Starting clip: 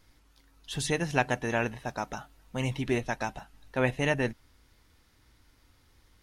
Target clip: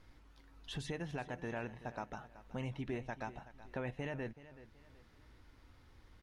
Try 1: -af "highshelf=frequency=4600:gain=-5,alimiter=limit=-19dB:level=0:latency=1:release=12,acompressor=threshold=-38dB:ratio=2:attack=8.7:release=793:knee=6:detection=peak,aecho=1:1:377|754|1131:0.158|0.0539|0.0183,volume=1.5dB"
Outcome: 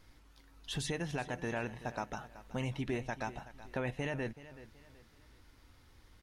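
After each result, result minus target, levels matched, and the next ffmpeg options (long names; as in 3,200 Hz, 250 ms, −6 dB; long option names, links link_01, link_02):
8,000 Hz band +6.0 dB; downward compressor: peak gain reduction −4.5 dB
-af "highshelf=frequency=4600:gain=-15,alimiter=limit=-19dB:level=0:latency=1:release=12,acompressor=threshold=-38dB:ratio=2:attack=8.7:release=793:knee=6:detection=peak,aecho=1:1:377|754|1131:0.158|0.0539|0.0183,volume=1.5dB"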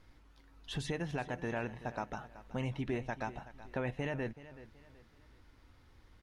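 downward compressor: peak gain reduction −4 dB
-af "highshelf=frequency=4600:gain=-15,alimiter=limit=-19dB:level=0:latency=1:release=12,acompressor=threshold=-46.5dB:ratio=2:attack=8.7:release=793:knee=6:detection=peak,aecho=1:1:377|754|1131:0.158|0.0539|0.0183,volume=1.5dB"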